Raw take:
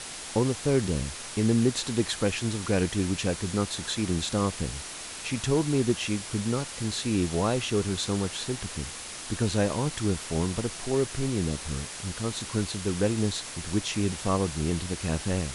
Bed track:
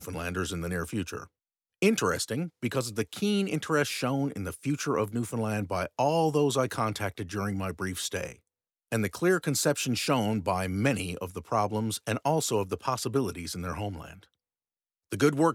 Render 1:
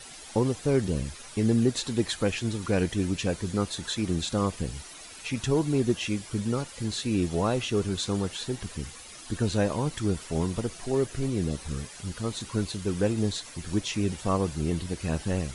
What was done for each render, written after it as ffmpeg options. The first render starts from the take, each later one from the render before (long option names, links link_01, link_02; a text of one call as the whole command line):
ffmpeg -i in.wav -af "afftdn=noise_reduction=11:noise_floor=-40" out.wav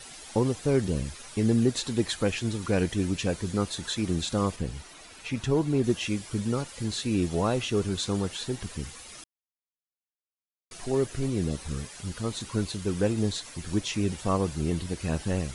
ffmpeg -i in.wav -filter_complex "[0:a]asettb=1/sr,asplit=3[link_01][link_02][link_03];[link_01]atrim=end=4.564[link_04];[link_02]atrim=start=4.56:end=5.84,asetpts=PTS-STARTPTS,afade=type=in:duration=0.004:curve=qsin,afade=type=out:start_time=1.276:duration=0.004:curve=qsin,highshelf=frequency=4400:gain=-7.5[link_05];[link_03]atrim=start=5.836[link_06];[link_04][link_05]acrossfade=duration=0.004:curve1=hsin:curve2=qsin[link_07];[link_07][link_06]acrossfade=duration=0.004:curve1=qsin:curve2=hsin,asplit=3[link_08][link_09][link_10];[link_08]atrim=end=9.24,asetpts=PTS-STARTPTS,afade=type=out:start_time=9.236:duration=0.004:curve=hsin[link_11];[link_09]atrim=start=9.24:end=10.71,asetpts=PTS-STARTPTS,volume=0[link_12];[link_10]atrim=start=10.71,asetpts=PTS-STARTPTS,afade=type=in:duration=0.004:curve=hsin[link_13];[link_11][link_12][link_13]concat=n=3:v=0:a=1" out.wav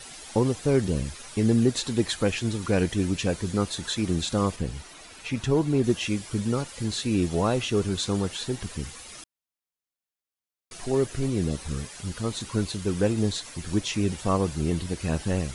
ffmpeg -i in.wav -af "volume=2dB" out.wav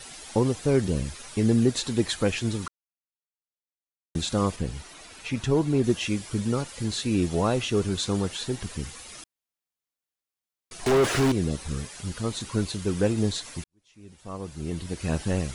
ffmpeg -i in.wav -filter_complex "[0:a]asettb=1/sr,asplit=3[link_01][link_02][link_03];[link_01]atrim=end=10.864[link_04];[link_02]atrim=start=10.86:end=11.32,asetpts=PTS-STARTPTS,afade=type=in:duration=0.004:curve=qsin,afade=type=out:start_time=0.456:duration=0.004:curve=qsin,asplit=2[link_05][link_06];[link_06]highpass=frequency=720:poles=1,volume=36dB,asoftclip=type=tanh:threshold=-13.5dB[link_07];[link_05][link_07]amix=inputs=2:normalize=0,lowpass=frequency=2000:poles=1,volume=-6dB[link_08];[link_03]atrim=start=11.316[link_09];[link_04][link_08]acrossfade=duration=0.004:curve1=hsin:curve2=qsin[link_10];[link_10][link_09]acrossfade=duration=0.004:curve1=qsin:curve2=hsin,asplit=4[link_11][link_12][link_13][link_14];[link_11]atrim=end=2.68,asetpts=PTS-STARTPTS,afade=type=out:start_time=2.676:duration=0.004:curve=hsin[link_15];[link_12]atrim=start=2.68:end=4.15,asetpts=PTS-STARTPTS,volume=0[link_16];[link_13]atrim=start=4.15:end=13.64,asetpts=PTS-STARTPTS,afade=type=in:duration=0.004:curve=hsin,afade=type=out:start_time=9.486:duration=0.004:curve=hsin[link_17];[link_14]atrim=start=13.64,asetpts=PTS-STARTPTS,afade=type=in:duration=1.47:curve=qua[link_18];[link_15][link_16][link_17][link_18]concat=n=4:v=0:a=1" out.wav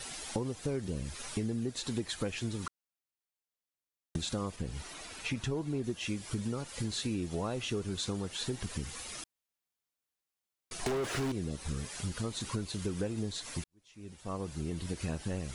ffmpeg -i in.wav -af "acompressor=threshold=-32dB:ratio=6" out.wav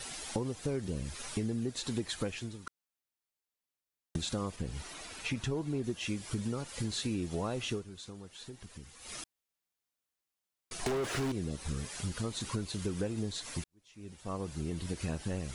ffmpeg -i in.wav -filter_complex "[0:a]asplit=4[link_01][link_02][link_03][link_04];[link_01]atrim=end=2.67,asetpts=PTS-STARTPTS,afade=type=out:start_time=2.22:duration=0.45:silence=0.16788[link_05];[link_02]atrim=start=2.67:end=7.85,asetpts=PTS-STARTPTS,afade=type=in:duration=0.004:curve=hsin:silence=0.16788,afade=type=out:start_time=5.05:duration=0.13:silence=0.266073[link_06];[link_03]atrim=start=7.85:end=9,asetpts=PTS-STARTPTS,volume=-11.5dB[link_07];[link_04]atrim=start=9,asetpts=PTS-STARTPTS,afade=type=in:duration=0.13:silence=0.266073[link_08];[link_05][link_06][link_07][link_08]concat=n=4:v=0:a=1" out.wav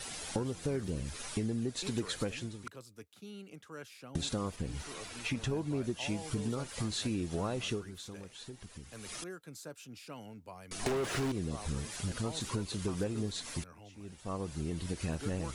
ffmpeg -i in.wav -i bed.wav -filter_complex "[1:a]volume=-21dB[link_01];[0:a][link_01]amix=inputs=2:normalize=0" out.wav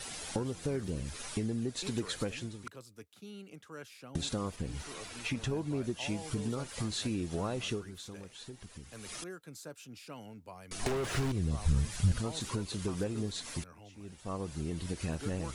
ffmpeg -i in.wav -filter_complex "[0:a]asettb=1/sr,asplit=3[link_01][link_02][link_03];[link_01]atrim=end=10.644[link_04];[link_02]atrim=start=10.64:end=12.19,asetpts=PTS-STARTPTS,afade=type=in:duration=0.004:curve=qsin,afade=type=out:start_time=1.546:duration=0.004:curve=qsin,asubboost=boost=10.5:cutoff=150[link_05];[link_03]atrim=start=12.186[link_06];[link_04][link_05]acrossfade=duration=0.004:curve1=hsin:curve2=qsin[link_07];[link_07][link_06]acrossfade=duration=0.004:curve1=qsin:curve2=hsin" out.wav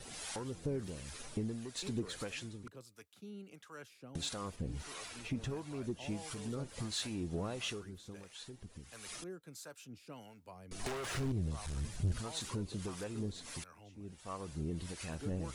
ffmpeg -i in.wav -filter_complex "[0:a]asoftclip=type=tanh:threshold=-27dB,acrossover=split=620[link_01][link_02];[link_01]aeval=exprs='val(0)*(1-0.7/2+0.7/2*cos(2*PI*1.5*n/s))':channel_layout=same[link_03];[link_02]aeval=exprs='val(0)*(1-0.7/2-0.7/2*cos(2*PI*1.5*n/s))':channel_layout=same[link_04];[link_03][link_04]amix=inputs=2:normalize=0" out.wav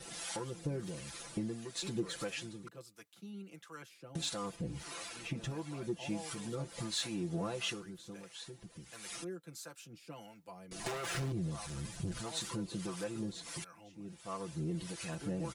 ffmpeg -i in.wav -af "highpass=frequency=100:poles=1,aecho=1:1:5.9:0.79" out.wav